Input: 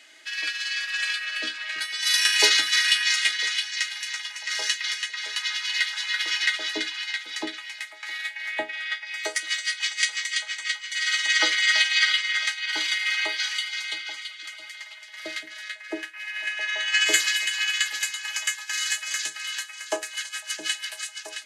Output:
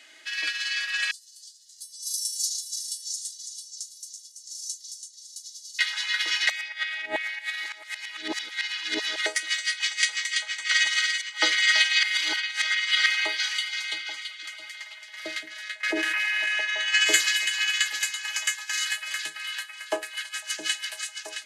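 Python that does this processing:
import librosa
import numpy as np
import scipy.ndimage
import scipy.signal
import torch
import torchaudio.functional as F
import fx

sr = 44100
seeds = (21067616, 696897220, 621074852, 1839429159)

y = fx.cheby2_bandstop(x, sr, low_hz=140.0, high_hz=2600.0, order=4, stop_db=50, at=(1.11, 5.79))
y = fx.env_flatten(y, sr, amount_pct=100, at=(15.83, 16.61))
y = fx.peak_eq(y, sr, hz=6500.0, db=-9.5, octaves=0.81, at=(18.85, 20.34))
y = fx.edit(y, sr, fx.reverse_span(start_s=6.49, length_s=2.77),
    fx.reverse_span(start_s=10.71, length_s=0.71),
    fx.reverse_span(start_s=12.03, length_s=1.03), tone=tone)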